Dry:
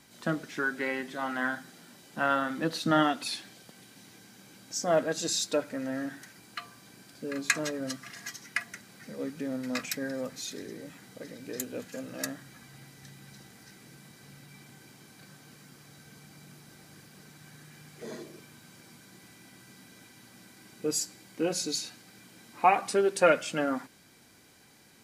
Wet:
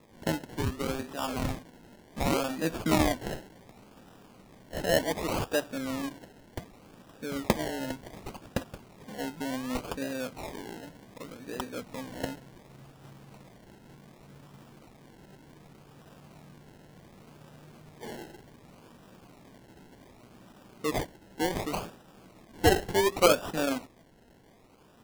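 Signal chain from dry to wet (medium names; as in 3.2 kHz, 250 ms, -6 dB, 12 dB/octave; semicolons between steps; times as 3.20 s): decimation with a swept rate 29×, swing 60% 0.67 Hz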